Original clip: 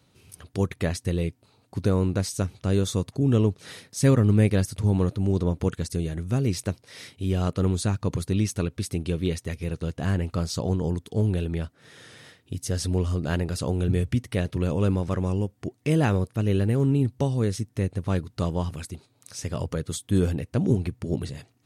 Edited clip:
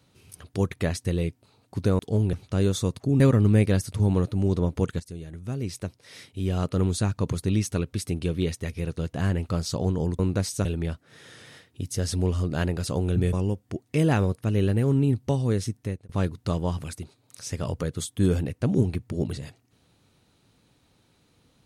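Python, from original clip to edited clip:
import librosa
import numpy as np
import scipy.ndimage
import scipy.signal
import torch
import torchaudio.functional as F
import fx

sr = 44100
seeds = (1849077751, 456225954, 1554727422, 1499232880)

y = fx.edit(x, sr, fx.swap(start_s=1.99, length_s=0.46, other_s=11.03, other_length_s=0.34),
    fx.cut(start_s=3.32, length_s=0.72),
    fx.fade_in_from(start_s=5.84, length_s=1.9, floor_db=-12.5),
    fx.cut(start_s=14.05, length_s=1.2),
    fx.fade_out_span(start_s=17.68, length_s=0.33), tone=tone)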